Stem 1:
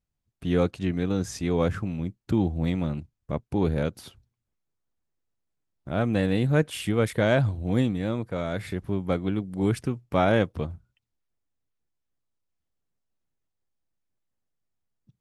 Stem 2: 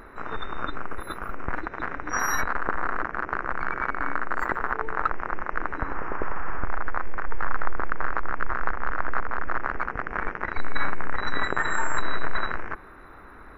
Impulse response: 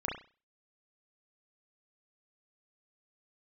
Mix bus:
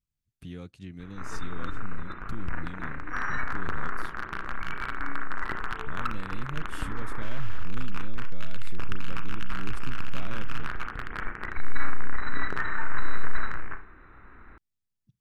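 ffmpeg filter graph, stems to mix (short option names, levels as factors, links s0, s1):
-filter_complex "[0:a]acompressor=threshold=0.01:ratio=2,volume=0.708[s0];[1:a]lowpass=f=3100:w=0.5412,lowpass=f=3100:w=1.3066,aeval=exprs='clip(val(0),-1,0.112)':c=same,adelay=1000,volume=0.596,asplit=2[s1][s2];[s2]volume=0.398[s3];[2:a]atrim=start_sample=2205[s4];[s3][s4]afir=irnorm=-1:irlink=0[s5];[s0][s1][s5]amix=inputs=3:normalize=0,equalizer=f=640:w=0.66:g=-10"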